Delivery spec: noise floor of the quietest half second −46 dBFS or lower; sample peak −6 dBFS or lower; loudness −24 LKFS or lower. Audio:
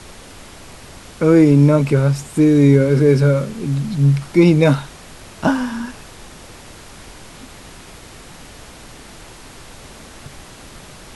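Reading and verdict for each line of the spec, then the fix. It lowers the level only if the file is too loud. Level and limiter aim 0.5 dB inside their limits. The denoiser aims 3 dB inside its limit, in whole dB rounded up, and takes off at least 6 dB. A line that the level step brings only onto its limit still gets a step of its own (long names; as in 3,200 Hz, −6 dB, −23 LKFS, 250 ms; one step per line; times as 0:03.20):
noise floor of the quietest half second −39 dBFS: out of spec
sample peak −1.5 dBFS: out of spec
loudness −15.0 LKFS: out of spec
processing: level −9.5 dB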